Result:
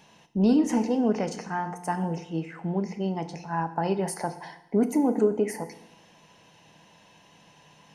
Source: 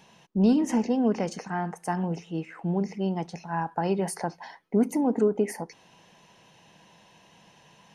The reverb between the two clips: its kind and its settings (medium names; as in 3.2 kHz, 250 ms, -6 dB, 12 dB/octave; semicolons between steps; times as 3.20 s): FDN reverb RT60 0.85 s, low-frequency decay 1.25×, high-frequency decay 0.95×, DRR 9 dB